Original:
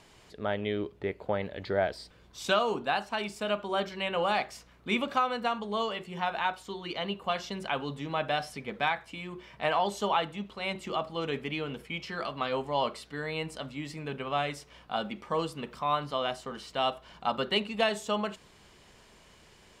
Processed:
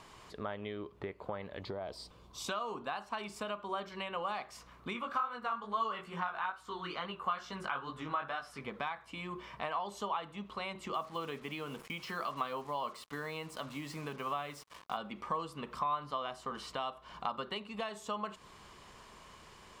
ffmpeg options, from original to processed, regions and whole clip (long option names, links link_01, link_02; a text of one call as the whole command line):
ffmpeg -i in.wav -filter_complex "[0:a]asettb=1/sr,asplit=3[link_01][link_02][link_03];[link_01]atrim=end=1.614[link_04];[link_02]atrim=start=1.61:end=2.48,asetpts=PTS-STARTPTS,afade=type=in:duration=0.004:curve=qsin,afade=type=out:start_time=0.866:duration=0.004:curve=qsin,equalizer=frequency=1700:width_type=o:width=0.86:gain=-10.5,acompressor=threshold=-29dB:ratio=6:attack=3.2:release=140:knee=1:detection=peak[link_05];[link_03]atrim=start=2.476[link_06];[link_04][link_05]acrossfade=duration=0.004:curve1=hsin:curve2=qsin[link_07];[link_07][link_06]acrossfade=duration=0.004:curve1=qsin:curve2=hsin,asettb=1/sr,asplit=3[link_08][link_09][link_10];[link_08]atrim=end=4.934[link_11];[link_09]atrim=start=4.93:end=8.61,asetpts=PTS-STARTPTS,afade=type=in:duration=0.004:curve=qsin,afade=type=out:start_time=3.676:duration=0.004:curve=qsin,equalizer=frequency=1400:width_type=o:width=0.64:gain=10,flanger=delay=16.5:depth=5.6:speed=2.3[link_12];[link_10]atrim=start=8.606[link_13];[link_11][link_12]acrossfade=duration=0.004:curve1=hsin:curve2=qsin[link_14];[link_14][link_13]acrossfade=duration=0.004:curve1=qsin:curve2=hsin,asettb=1/sr,asplit=3[link_15][link_16][link_17];[link_15]atrim=end=10.944[link_18];[link_16]atrim=start=10.94:end=14.97,asetpts=PTS-STARTPTS,afade=type=in:duration=0.004:curve=qsin,afade=type=out:start_time=4.026:duration=0.004:curve=qsin,highpass=100,acrusher=bits=7:mix=0:aa=0.5[link_19];[link_17]atrim=start=14.966[link_20];[link_18][link_19]acrossfade=duration=0.004:curve1=hsin:curve2=qsin[link_21];[link_21][link_20]acrossfade=duration=0.004:curve1=qsin:curve2=hsin,acompressor=threshold=-39dB:ratio=5,equalizer=frequency=1100:width_type=o:width=0.48:gain=10.5" out.wav